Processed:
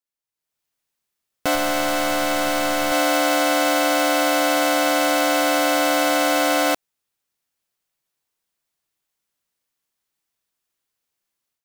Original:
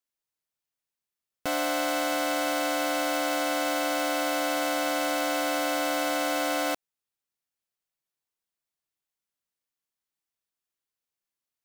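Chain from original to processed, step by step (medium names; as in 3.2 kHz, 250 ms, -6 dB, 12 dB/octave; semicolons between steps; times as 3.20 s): 1.55–2.92 s: partial rectifier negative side -7 dB; level rider gain up to 12.5 dB; trim -3.5 dB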